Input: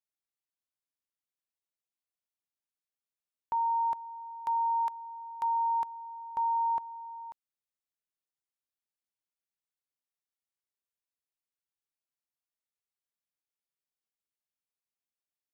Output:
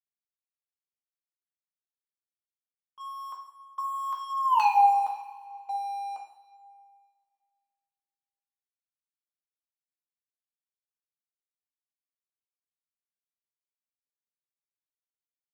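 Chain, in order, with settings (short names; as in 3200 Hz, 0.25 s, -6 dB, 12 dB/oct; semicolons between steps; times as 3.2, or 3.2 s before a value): Doppler pass-by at 4.57, 53 m/s, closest 3.4 m; gate -58 dBFS, range -11 dB; Bessel high-pass 360 Hz, order 8; bell 1000 Hz +11.5 dB 0.7 oct; in parallel at +1 dB: compressor, threshold -47 dBFS, peak gain reduction 22 dB; on the sum: sample leveller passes 2; reverb, pre-delay 3 ms, DRR -1 dB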